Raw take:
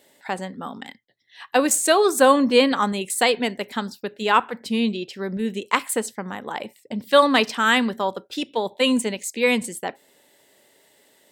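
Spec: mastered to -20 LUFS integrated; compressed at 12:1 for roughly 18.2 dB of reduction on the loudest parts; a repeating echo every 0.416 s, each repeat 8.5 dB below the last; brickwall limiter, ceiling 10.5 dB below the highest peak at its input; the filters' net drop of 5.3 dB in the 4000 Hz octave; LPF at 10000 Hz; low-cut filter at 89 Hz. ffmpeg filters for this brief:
-af "highpass=89,lowpass=10k,equalizer=f=4k:t=o:g=-7.5,acompressor=threshold=-29dB:ratio=12,alimiter=level_in=0.5dB:limit=-24dB:level=0:latency=1,volume=-0.5dB,aecho=1:1:416|832|1248|1664:0.376|0.143|0.0543|0.0206,volume=15.5dB"

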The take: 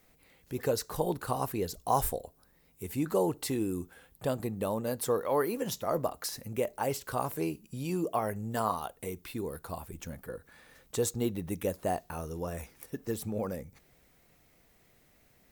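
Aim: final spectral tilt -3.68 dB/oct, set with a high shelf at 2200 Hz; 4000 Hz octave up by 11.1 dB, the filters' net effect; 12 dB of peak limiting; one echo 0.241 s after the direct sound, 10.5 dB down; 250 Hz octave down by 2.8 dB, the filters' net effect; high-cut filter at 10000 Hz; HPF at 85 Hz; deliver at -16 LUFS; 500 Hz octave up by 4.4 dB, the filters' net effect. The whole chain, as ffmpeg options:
-af "highpass=85,lowpass=10k,equalizer=f=250:t=o:g=-7,equalizer=f=500:t=o:g=6.5,highshelf=f=2.2k:g=5,equalizer=f=4k:t=o:g=9,alimiter=limit=-22.5dB:level=0:latency=1,aecho=1:1:241:0.299,volume=18dB"

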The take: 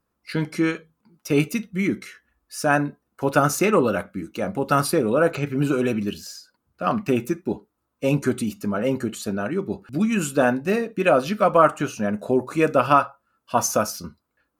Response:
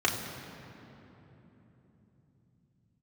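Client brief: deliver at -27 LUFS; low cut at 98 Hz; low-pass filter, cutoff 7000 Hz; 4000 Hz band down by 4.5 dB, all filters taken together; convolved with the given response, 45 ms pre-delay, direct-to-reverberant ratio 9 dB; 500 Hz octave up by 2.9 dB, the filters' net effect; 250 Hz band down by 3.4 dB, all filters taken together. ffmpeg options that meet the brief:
-filter_complex "[0:a]highpass=98,lowpass=7k,equalizer=f=250:t=o:g=-6,equalizer=f=500:t=o:g=5,equalizer=f=4k:t=o:g=-6,asplit=2[a][b];[1:a]atrim=start_sample=2205,adelay=45[c];[b][c]afir=irnorm=-1:irlink=0,volume=-21dB[d];[a][d]amix=inputs=2:normalize=0,volume=-5.5dB"

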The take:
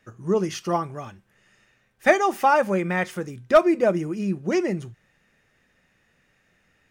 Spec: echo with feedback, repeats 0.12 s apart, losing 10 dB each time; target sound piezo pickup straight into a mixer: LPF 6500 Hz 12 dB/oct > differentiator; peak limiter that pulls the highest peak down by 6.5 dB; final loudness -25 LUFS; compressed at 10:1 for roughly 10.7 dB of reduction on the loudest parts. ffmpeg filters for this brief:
-af "acompressor=threshold=-21dB:ratio=10,alimiter=limit=-19dB:level=0:latency=1,lowpass=6.5k,aderivative,aecho=1:1:120|240|360|480:0.316|0.101|0.0324|0.0104,volume=21.5dB"

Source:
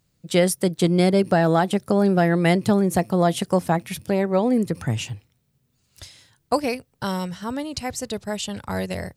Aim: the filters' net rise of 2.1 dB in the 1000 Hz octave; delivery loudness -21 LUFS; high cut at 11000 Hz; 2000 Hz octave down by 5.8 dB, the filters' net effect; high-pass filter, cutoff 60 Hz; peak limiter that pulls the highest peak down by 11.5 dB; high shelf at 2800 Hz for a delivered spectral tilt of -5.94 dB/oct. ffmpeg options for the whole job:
-af "highpass=60,lowpass=11k,equalizer=f=1k:t=o:g=5,equalizer=f=2k:t=o:g=-8,highshelf=f=2.8k:g=-3,volume=7dB,alimiter=limit=-10dB:level=0:latency=1"

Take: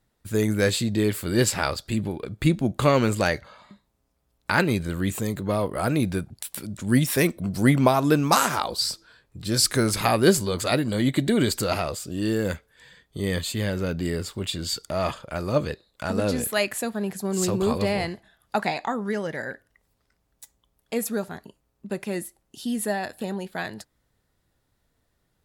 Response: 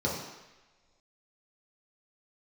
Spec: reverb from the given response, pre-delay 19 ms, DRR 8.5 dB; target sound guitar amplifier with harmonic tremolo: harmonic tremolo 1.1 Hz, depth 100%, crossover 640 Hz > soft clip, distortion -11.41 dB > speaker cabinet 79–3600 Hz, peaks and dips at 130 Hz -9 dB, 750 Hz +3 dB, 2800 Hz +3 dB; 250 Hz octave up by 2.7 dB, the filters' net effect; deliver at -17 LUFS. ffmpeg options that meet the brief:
-filter_complex "[0:a]equalizer=f=250:t=o:g=4,asplit=2[a][b];[1:a]atrim=start_sample=2205,adelay=19[c];[b][c]afir=irnorm=-1:irlink=0,volume=-17.5dB[d];[a][d]amix=inputs=2:normalize=0,acrossover=split=640[e][f];[e]aeval=exprs='val(0)*(1-1/2+1/2*cos(2*PI*1.1*n/s))':c=same[g];[f]aeval=exprs='val(0)*(1-1/2-1/2*cos(2*PI*1.1*n/s))':c=same[h];[g][h]amix=inputs=2:normalize=0,asoftclip=threshold=-19dB,highpass=79,equalizer=f=130:t=q:w=4:g=-9,equalizer=f=750:t=q:w=4:g=3,equalizer=f=2.8k:t=q:w=4:g=3,lowpass=f=3.6k:w=0.5412,lowpass=f=3.6k:w=1.3066,volume=13dB"

